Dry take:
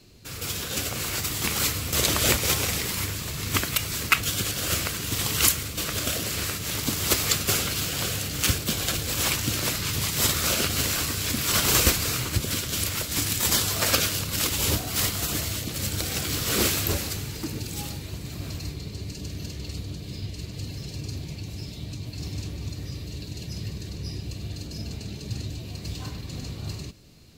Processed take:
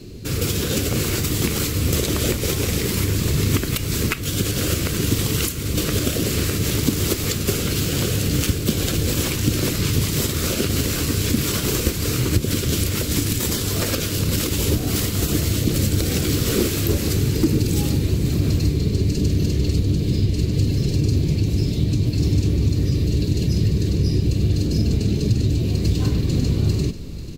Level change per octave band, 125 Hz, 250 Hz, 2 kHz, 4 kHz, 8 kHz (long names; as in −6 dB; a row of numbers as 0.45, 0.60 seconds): +12.0, +12.0, −0.5, +0.5, 0.0 decibels